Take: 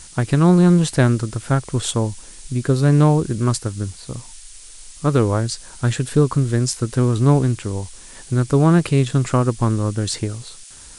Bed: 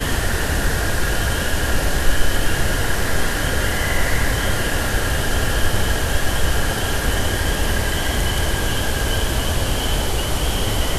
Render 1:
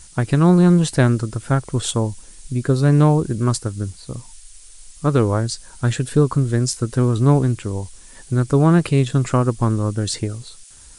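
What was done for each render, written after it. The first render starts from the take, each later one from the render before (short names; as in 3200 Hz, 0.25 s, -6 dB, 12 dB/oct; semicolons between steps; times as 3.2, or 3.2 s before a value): denoiser 6 dB, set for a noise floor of -41 dBFS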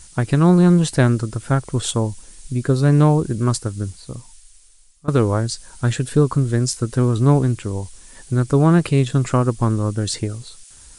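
3.88–5.08 fade out, to -20.5 dB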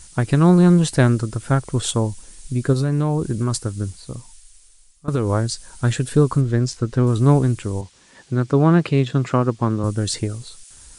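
2.73–5.3 compressor, threshold -15 dBFS; 6.41–7.07 air absorption 96 m; 7.81–9.84 BPF 120–4700 Hz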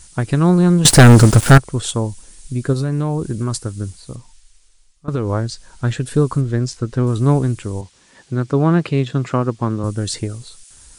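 0.85–1.58 sample leveller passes 5; 4.16–6.06 air absorption 65 m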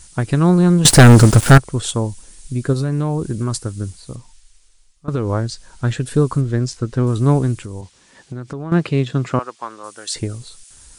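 7.6–8.72 compressor, threshold -25 dBFS; 9.39–10.16 HPF 830 Hz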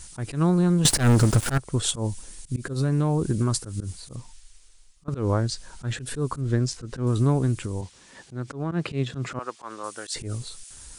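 compressor 3:1, threshold -19 dBFS, peak gain reduction 11 dB; auto swell 0.102 s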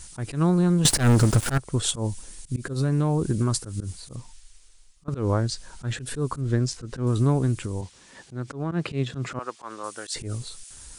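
nothing audible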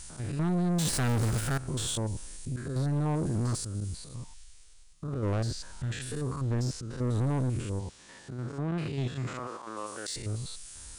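stepped spectrum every 0.1 s; soft clip -25 dBFS, distortion -8 dB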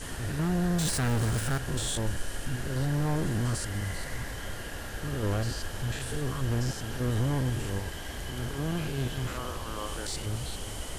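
add bed -18 dB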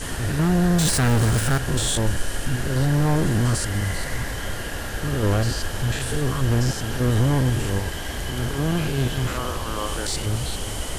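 gain +8.5 dB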